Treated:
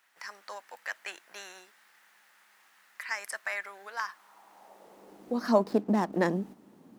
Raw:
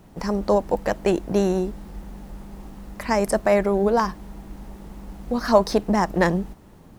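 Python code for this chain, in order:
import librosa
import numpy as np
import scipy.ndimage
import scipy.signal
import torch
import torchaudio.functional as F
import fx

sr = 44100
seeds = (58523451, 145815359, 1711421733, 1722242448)

y = fx.median_filter(x, sr, points=15, at=(5.62, 6.13))
y = fx.filter_sweep_highpass(y, sr, from_hz=1700.0, to_hz=240.0, start_s=3.96, end_s=5.51, q=2.2)
y = y * 10.0 ** (-9.0 / 20.0)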